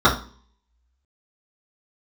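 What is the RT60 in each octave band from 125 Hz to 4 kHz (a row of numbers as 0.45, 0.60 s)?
0.50, 0.55, 0.45, 0.40, 0.35, 0.40 s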